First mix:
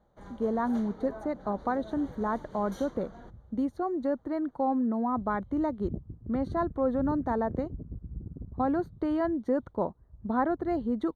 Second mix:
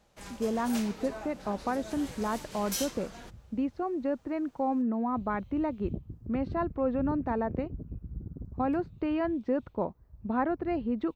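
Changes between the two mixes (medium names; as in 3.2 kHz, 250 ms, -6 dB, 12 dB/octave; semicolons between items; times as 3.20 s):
speech: add tape spacing loss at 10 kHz 43 dB; master: remove boxcar filter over 17 samples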